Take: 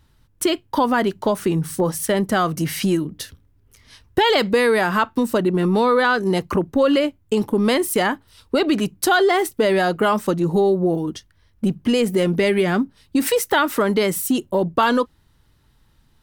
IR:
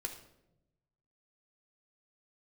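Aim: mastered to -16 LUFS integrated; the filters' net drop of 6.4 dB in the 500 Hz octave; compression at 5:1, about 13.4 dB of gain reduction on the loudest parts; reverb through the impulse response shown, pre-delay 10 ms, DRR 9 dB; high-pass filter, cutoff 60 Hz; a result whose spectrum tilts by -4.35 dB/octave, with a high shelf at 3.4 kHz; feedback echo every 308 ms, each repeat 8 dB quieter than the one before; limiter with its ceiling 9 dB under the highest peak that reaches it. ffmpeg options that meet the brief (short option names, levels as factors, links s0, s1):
-filter_complex "[0:a]highpass=60,equalizer=f=500:t=o:g=-8.5,highshelf=f=3400:g=4.5,acompressor=threshold=0.0316:ratio=5,alimiter=limit=0.0668:level=0:latency=1,aecho=1:1:308|616|924|1232|1540:0.398|0.159|0.0637|0.0255|0.0102,asplit=2[s0][s1];[1:a]atrim=start_sample=2205,adelay=10[s2];[s1][s2]afir=irnorm=-1:irlink=0,volume=0.376[s3];[s0][s3]amix=inputs=2:normalize=0,volume=6.68"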